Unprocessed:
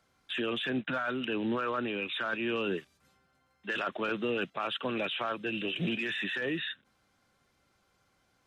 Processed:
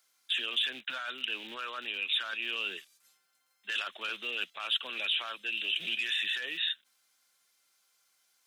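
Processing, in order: rattle on loud lows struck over -37 dBFS, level -39 dBFS; dynamic bell 3.3 kHz, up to +6 dB, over -50 dBFS, Q 1.7; high-pass 91 Hz; differentiator; trim +8.5 dB

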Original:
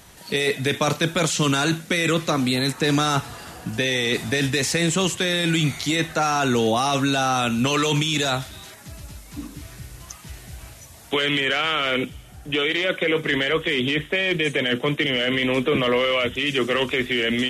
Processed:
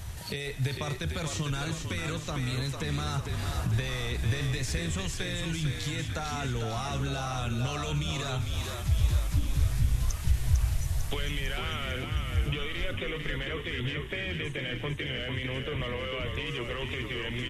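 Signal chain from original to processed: compression 6:1, threshold -34 dBFS, peak gain reduction 16.5 dB; resonant low shelf 150 Hz +14 dB, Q 1.5; frequency-shifting echo 450 ms, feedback 60%, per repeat -47 Hz, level -5 dB

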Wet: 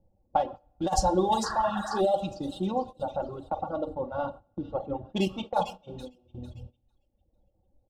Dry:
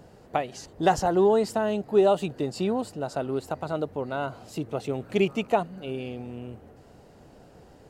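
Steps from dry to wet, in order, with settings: local Wiener filter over 9 samples; level-controlled noise filter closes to 430 Hz, open at -17.5 dBFS; feedback echo behind a high-pass 450 ms, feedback 36%, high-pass 2.8 kHz, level -4.5 dB; simulated room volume 800 m³, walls mixed, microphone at 0.98 m; painted sound noise, 1.43–2.01 s, 640–1900 Hz -29 dBFS; FFT filter 130 Hz 0 dB, 240 Hz -15 dB, 480 Hz -9 dB, 770 Hz -2 dB, 2.3 kHz -23 dB, 3.4 kHz -2 dB; reverb removal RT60 1.9 s; compressor with a negative ratio -26 dBFS, ratio -0.5; peaking EQ 610 Hz -3 dB 0.63 oct; gate -44 dBFS, range -17 dB; comb 3.6 ms, depth 86%; trim +5.5 dB

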